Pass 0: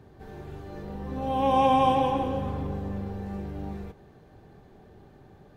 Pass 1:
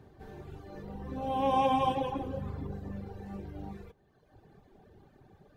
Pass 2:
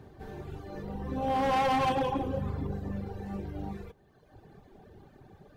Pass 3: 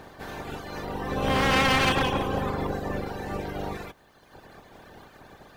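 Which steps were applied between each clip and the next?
reverb reduction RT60 1.4 s; level −3 dB
hard clipping −28 dBFS, distortion −8 dB; level +4.5 dB
ceiling on every frequency bin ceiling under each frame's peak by 19 dB; level +5 dB

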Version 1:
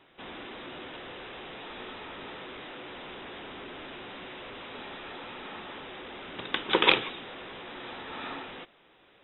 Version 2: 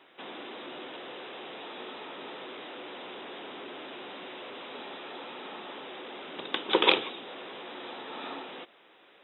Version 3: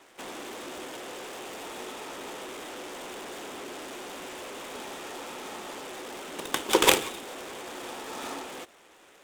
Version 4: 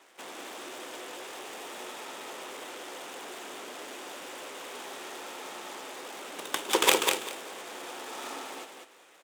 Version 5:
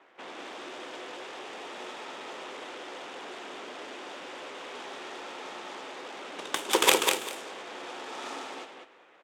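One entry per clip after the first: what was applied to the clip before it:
dynamic equaliser 1,800 Hz, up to −7 dB, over −49 dBFS, Q 0.93; high-pass filter 270 Hz 12 dB per octave; level +2.5 dB
short delay modulated by noise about 4,400 Hz, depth 0.045 ms; level +2.5 dB
high-pass filter 400 Hz 6 dB per octave; on a send: repeating echo 197 ms, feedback 19%, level −4.5 dB; on the sum: level −2 dB
low-pass that shuts in the quiet parts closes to 2,200 Hz, open at −30 dBFS; level +1 dB

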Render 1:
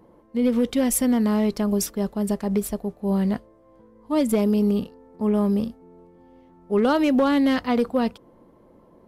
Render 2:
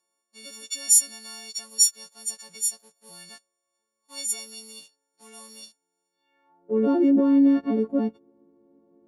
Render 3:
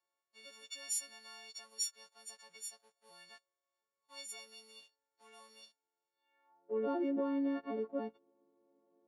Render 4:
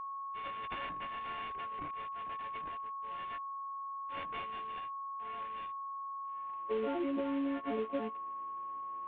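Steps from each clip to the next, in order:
every partial snapped to a pitch grid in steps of 4 semitones; leveller curve on the samples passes 1; band-pass filter sweep 6,600 Hz → 310 Hz, 0:06.09–0:06.75
three-way crossover with the lows and the highs turned down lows −15 dB, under 430 Hz, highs −15 dB, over 4,000 Hz; level −7 dB
variable-slope delta modulation 16 kbit/s; steady tone 1,100 Hz −47 dBFS; downward compressor 6 to 1, threshold −40 dBFS, peak gain reduction 9 dB; level +8 dB

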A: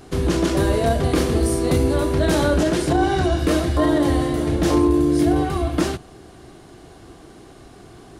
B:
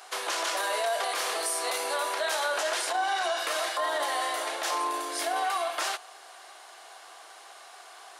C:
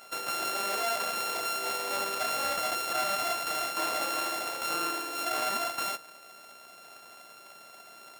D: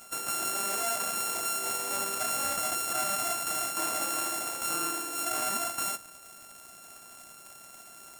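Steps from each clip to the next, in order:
inverse Chebyshev high-pass filter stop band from 160 Hz, stop band 70 dB; brickwall limiter −23 dBFS, peak gain reduction 8.5 dB; level +3 dB
samples sorted by size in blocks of 32 samples; level −2 dB
surface crackle 150 per second −40 dBFS; octave-band graphic EQ 500/1,000/2,000/4,000/8,000 Hz −8/−4/−5/−10/+6 dB; level +4 dB

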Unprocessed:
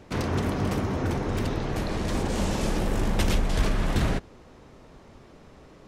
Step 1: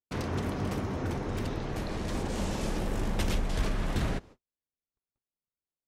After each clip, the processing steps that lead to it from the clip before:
noise gate −42 dBFS, range −50 dB
level −5.5 dB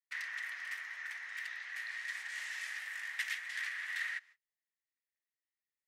four-pole ladder high-pass 1,800 Hz, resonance 85%
level +5.5 dB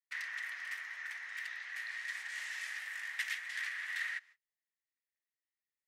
no processing that can be heard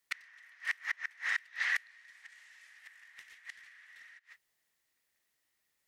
harmonic generator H 5 −15 dB, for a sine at −24 dBFS
gate with flip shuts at −30 dBFS, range −30 dB
level +9 dB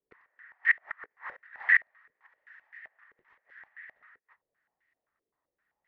low-pass on a step sequencer 7.7 Hz 440–1,900 Hz

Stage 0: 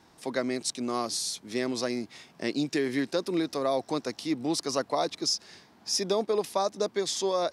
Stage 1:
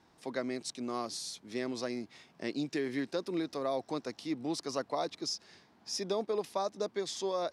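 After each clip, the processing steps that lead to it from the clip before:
high-shelf EQ 6,800 Hz −7.5 dB
level −6 dB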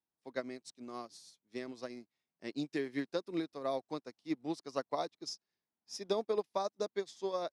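expander for the loud parts 2.5 to 1, over −52 dBFS
level +1.5 dB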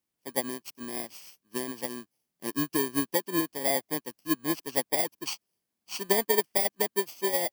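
samples in bit-reversed order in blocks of 32 samples
level +8.5 dB

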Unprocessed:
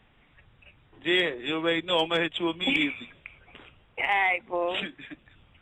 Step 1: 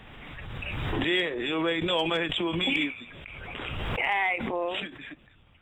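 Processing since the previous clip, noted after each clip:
background raised ahead of every attack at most 22 dB per second
level −2.5 dB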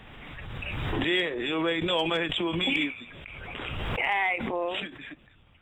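no processing that can be heard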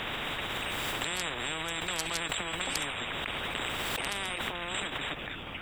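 every bin compressed towards the loudest bin 10 to 1

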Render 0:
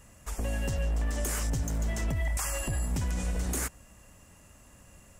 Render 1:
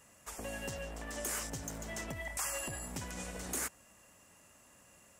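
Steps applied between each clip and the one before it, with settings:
high-pass filter 360 Hz 6 dB per octave
level −3 dB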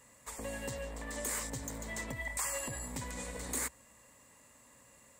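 EQ curve with evenly spaced ripples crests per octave 1, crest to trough 7 dB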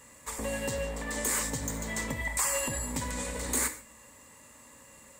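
notch filter 680 Hz, Q 12
reverb whose tail is shaped and stops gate 180 ms falling, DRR 7 dB
level +6.5 dB

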